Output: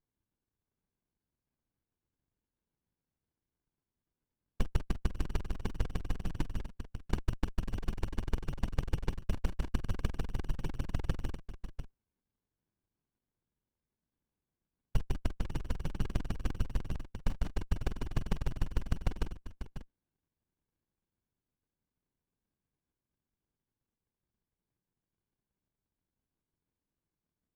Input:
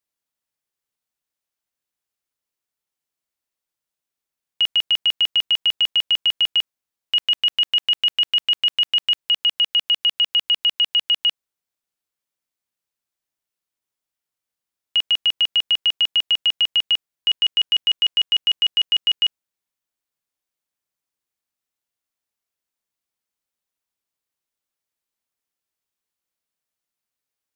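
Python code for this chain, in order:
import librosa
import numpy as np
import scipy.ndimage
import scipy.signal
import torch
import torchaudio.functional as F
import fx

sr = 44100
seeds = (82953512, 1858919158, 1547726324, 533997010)

p1 = fx.env_lowpass_down(x, sr, base_hz=1100.0, full_db=-14.5)
p2 = fx.lowpass_res(p1, sr, hz=1600.0, q=5.8)
p3 = p2 + fx.echo_single(p2, sr, ms=545, db=-10.0, dry=0)
p4 = fx.whisperise(p3, sr, seeds[0])
p5 = fx.running_max(p4, sr, window=65)
y = F.gain(torch.from_numpy(p5), 1.0).numpy()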